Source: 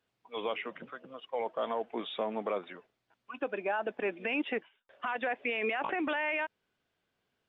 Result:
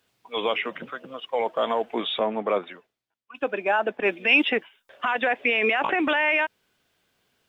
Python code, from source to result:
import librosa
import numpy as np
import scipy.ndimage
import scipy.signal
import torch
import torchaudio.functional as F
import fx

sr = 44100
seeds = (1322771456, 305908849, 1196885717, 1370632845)

y = fx.high_shelf(x, sr, hz=3300.0, db=8.5)
y = fx.band_widen(y, sr, depth_pct=100, at=(2.19, 4.5))
y = y * 10.0 ** (8.5 / 20.0)